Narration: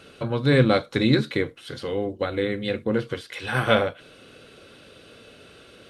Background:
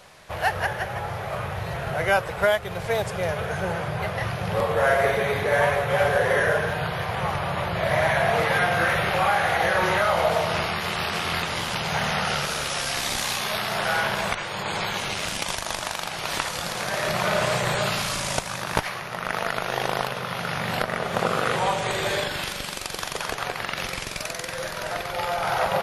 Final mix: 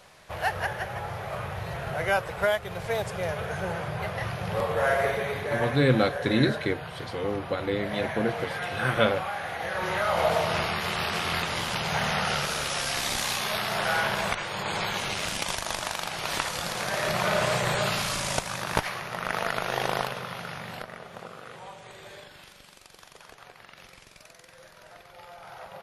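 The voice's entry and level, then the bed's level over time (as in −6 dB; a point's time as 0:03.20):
5.30 s, −3.5 dB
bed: 0:05.00 −4 dB
0:05.99 −11.5 dB
0:09.57 −11.5 dB
0:10.25 −2 dB
0:19.97 −2 dB
0:21.36 −20 dB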